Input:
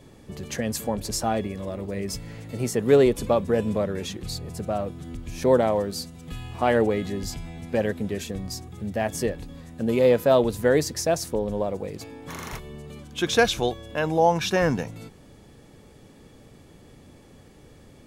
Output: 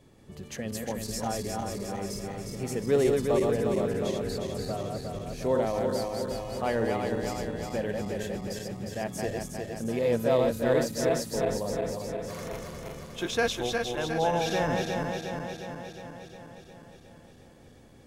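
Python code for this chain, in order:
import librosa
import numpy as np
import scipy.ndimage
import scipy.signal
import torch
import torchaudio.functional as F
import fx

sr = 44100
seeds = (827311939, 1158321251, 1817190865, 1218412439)

y = fx.reverse_delay_fb(x, sr, ms=179, feedback_pct=79, wet_db=-3.0)
y = F.gain(torch.from_numpy(y), -8.0).numpy()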